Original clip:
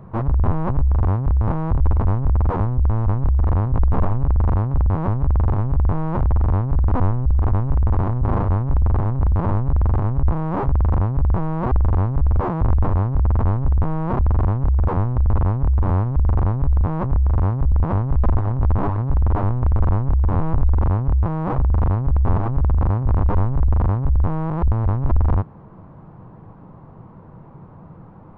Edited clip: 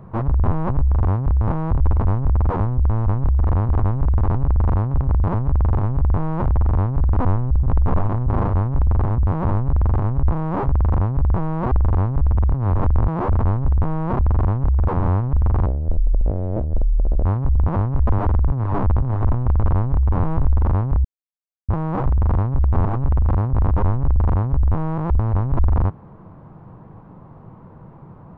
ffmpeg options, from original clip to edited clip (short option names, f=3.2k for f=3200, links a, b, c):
-filter_complex "[0:a]asplit=17[a][b][c][d][e][f][g][h][i][j][k][l][m][n][o][p][q];[a]atrim=end=3.692[r];[b]atrim=start=7.378:end=8.042[s];[c]atrim=start=4.148:end=4.812[t];[d]atrim=start=9.128:end=9.462[u];[e]atrim=start=5.088:end=7.382[v];[f]atrim=start=3.688:end=4.152[w];[g]atrim=start=8.038:end=9.132[x];[h]atrim=start=4.808:end=5.092[y];[i]atrim=start=9.458:end=12.352[z];[j]atrim=start=12.348:end=13.342,asetpts=PTS-STARTPTS,areverse[aa];[k]atrim=start=13.338:end=14.992[ab];[l]atrim=start=15.818:end=16.494[ac];[m]atrim=start=16.49:end=17.41,asetpts=PTS-STARTPTS,asetrate=25578,aresample=44100[ad];[n]atrim=start=17.406:end=18.292[ae];[o]atrim=start=18.288:end=19.492,asetpts=PTS-STARTPTS,areverse[af];[p]atrim=start=19.488:end=21.21,asetpts=PTS-STARTPTS,afade=t=out:st=1.718:d=0.004:c=hsin,apad=pad_dur=0.64[ag];[q]atrim=start=21.21,asetpts=PTS-STARTPTS,afade=t=in:d=0.004:c=hsin[ah];[r][s]acrossfade=d=0.004:c1=hsin:c2=hsin[ai];[ai][t]acrossfade=d=0.004:c1=hsin:c2=hsin[aj];[aj][u]acrossfade=d=0.004:c1=hsin:c2=hsin[ak];[ak][v]acrossfade=d=0.004:c1=hsin:c2=hsin[al];[al][w]acrossfade=d=0.004:c1=hsin:c2=hsin[am];[am][x]acrossfade=d=0.004:c1=hsin:c2=hsin[an];[an][y]acrossfade=d=0.004:c1=hsin:c2=hsin[ao];[ao][z]acrossfade=d=0.004:c1=hsin:c2=hsin[ap];[ap][aa]acrossfade=d=0.004:c1=hsin:c2=hsin[aq];[aq][ab]acrossfade=d=0.004:c1=hsin:c2=hsin[ar];[ar][ac]acrossfade=d=0.004:c1=hsin:c2=hsin[as];[as][ad]acrossfade=d=0.004:c1=hsin:c2=hsin[at];[at][ae]acrossfade=d=0.004:c1=hsin:c2=hsin[au];[au][af]acrossfade=d=0.004:c1=hsin:c2=hsin[av];[ag][ah]concat=n=2:v=0:a=1[aw];[av][aw]acrossfade=d=0.004:c1=hsin:c2=hsin"